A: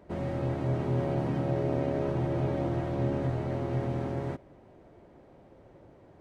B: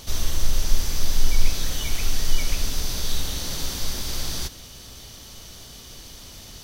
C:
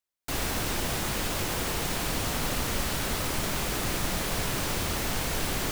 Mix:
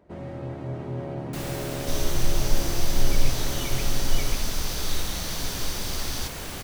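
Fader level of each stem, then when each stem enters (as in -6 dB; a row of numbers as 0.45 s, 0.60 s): -3.5 dB, -3.0 dB, -6.0 dB; 0.00 s, 1.80 s, 1.05 s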